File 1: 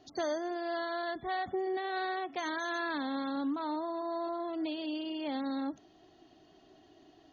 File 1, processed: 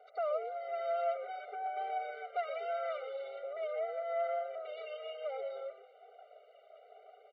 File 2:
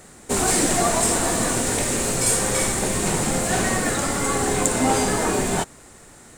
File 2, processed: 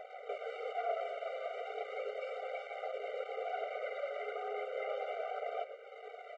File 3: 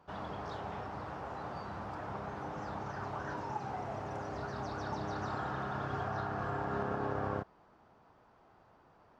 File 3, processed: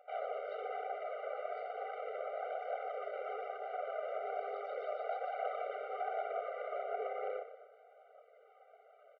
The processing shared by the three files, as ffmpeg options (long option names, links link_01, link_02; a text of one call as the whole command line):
ffmpeg -i in.wav -filter_complex "[0:a]equalizer=frequency=1400:width_type=o:width=0.43:gain=-12.5,acompressor=threshold=-38dB:ratio=5,flanger=delay=1.1:depth=2.4:regen=3:speed=0.38:shape=triangular,aeval=exprs='max(val(0),0)':channel_layout=same,aphaser=in_gain=1:out_gain=1:delay=3.9:decay=0.31:speed=1.1:type=triangular,asoftclip=type=hard:threshold=-36.5dB,highpass=310,equalizer=frequency=340:width_type=q:width=4:gain=-7,equalizer=frequency=1000:width_type=q:width=4:gain=-3,equalizer=frequency=1600:width_type=q:width=4:gain=-8,lowpass=frequency=2300:width=0.5412,lowpass=frequency=2300:width=1.3066,asplit=8[link_01][link_02][link_03][link_04][link_05][link_06][link_07][link_08];[link_02]adelay=121,afreqshift=-150,volume=-10dB[link_09];[link_03]adelay=242,afreqshift=-300,volume=-14.6dB[link_10];[link_04]adelay=363,afreqshift=-450,volume=-19.2dB[link_11];[link_05]adelay=484,afreqshift=-600,volume=-23.7dB[link_12];[link_06]adelay=605,afreqshift=-750,volume=-28.3dB[link_13];[link_07]adelay=726,afreqshift=-900,volume=-32.9dB[link_14];[link_08]adelay=847,afreqshift=-1050,volume=-37.5dB[link_15];[link_01][link_09][link_10][link_11][link_12][link_13][link_14][link_15]amix=inputs=8:normalize=0,afftfilt=real='re*eq(mod(floor(b*sr/1024/390),2),1)':imag='im*eq(mod(floor(b*sr/1024/390),2),1)':win_size=1024:overlap=0.75,volume=15.5dB" out.wav